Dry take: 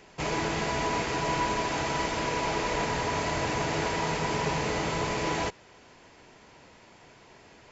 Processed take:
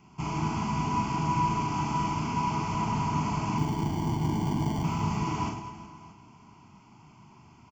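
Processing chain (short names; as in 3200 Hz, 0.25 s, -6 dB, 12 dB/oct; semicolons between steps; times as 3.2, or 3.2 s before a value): 3.58–4.84 sample-rate reducer 1300 Hz, jitter 0%; fifteen-band EQ 100 Hz +4 dB, 1000 Hz +7 dB, 4000 Hz +3 dB; reverse bouncing-ball echo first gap 40 ms, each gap 1.6×, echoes 5; 1.64–2.9 crackle 220/s -44 dBFS; bell 180 Hz +14.5 dB 2.2 oct; fixed phaser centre 2600 Hz, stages 8; plate-style reverb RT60 2.5 s, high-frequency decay 0.75×, DRR 12.5 dB; gain -8.5 dB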